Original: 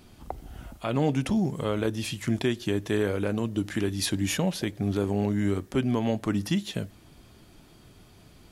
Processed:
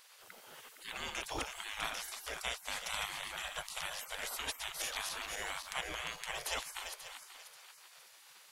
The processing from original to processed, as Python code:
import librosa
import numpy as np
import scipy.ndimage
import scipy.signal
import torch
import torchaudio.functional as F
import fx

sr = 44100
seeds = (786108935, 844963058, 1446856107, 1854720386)

y = fx.reverse_delay_fb(x, sr, ms=268, feedback_pct=56, wet_db=-7)
y = fx.add_hum(y, sr, base_hz=60, snr_db=25)
y = fx.spec_gate(y, sr, threshold_db=-25, keep='weak')
y = y * 10.0 ** (3.0 / 20.0)